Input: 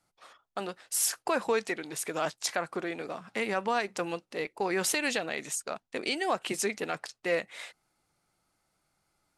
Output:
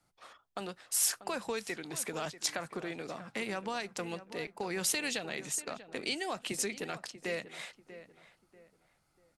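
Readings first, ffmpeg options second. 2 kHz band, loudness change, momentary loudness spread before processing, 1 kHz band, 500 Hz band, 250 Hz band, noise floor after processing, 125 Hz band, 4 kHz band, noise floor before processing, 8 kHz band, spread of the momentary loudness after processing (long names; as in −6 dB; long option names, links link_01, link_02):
−5.5 dB, −4.0 dB, 11 LU, −7.5 dB, −7.0 dB, −4.5 dB, −74 dBFS, −1.0 dB, −1.5 dB, −80 dBFS, −1.0 dB, 13 LU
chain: -filter_complex "[0:a]bass=frequency=250:gain=4,treble=frequency=4000:gain=-1,acrossover=split=130|3000[link_01][link_02][link_03];[link_02]acompressor=threshold=-41dB:ratio=2[link_04];[link_01][link_04][link_03]amix=inputs=3:normalize=0,asplit=2[link_05][link_06];[link_06]adelay=640,lowpass=frequency=1800:poles=1,volume=-13dB,asplit=2[link_07][link_08];[link_08]adelay=640,lowpass=frequency=1800:poles=1,volume=0.34,asplit=2[link_09][link_10];[link_10]adelay=640,lowpass=frequency=1800:poles=1,volume=0.34[link_11];[link_07][link_09][link_11]amix=inputs=3:normalize=0[link_12];[link_05][link_12]amix=inputs=2:normalize=0"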